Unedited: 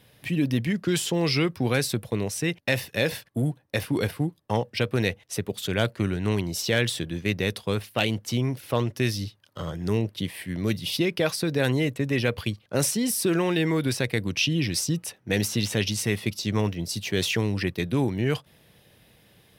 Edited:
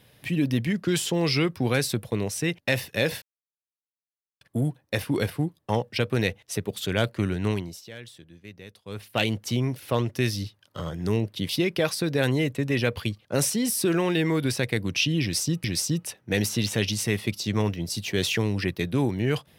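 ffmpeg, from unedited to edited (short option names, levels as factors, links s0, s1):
-filter_complex "[0:a]asplit=6[s0][s1][s2][s3][s4][s5];[s0]atrim=end=3.22,asetpts=PTS-STARTPTS,afade=t=out:st=3.216:d=0.004:c=hsin,apad=pad_dur=1.19[s6];[s1]atrim=start=3.22:end=6.62,asetpts=PTS-STARTPTS,afade=t=in:d=0.004:c=hsin,afade=t=out:st=3.06:d=0.34:silence=0.11885[s7];[s2]atrim=start=6.62:end=7.66,asetpts=PTS-STARTPTS,volume=0.119[s8];[s3]atrim=start=7.66:end=10.302,asetpts=PTS-STARTPTS,afade=t=in:d=0.34:silence=0.11885[s9];[s4]atrim=start=10.898:end=15.052[s10];[s5]atrim=start=14.628[s11];[s6][s7][s8][s9]concat=n=4:v=0:a=1[s12];[s12][s10]acrossfade=d=0.004:c1=hsin:c2=hsin[s13];[s13][s11]acrossfade=d=0.004:c1=hsin:c2=hsin"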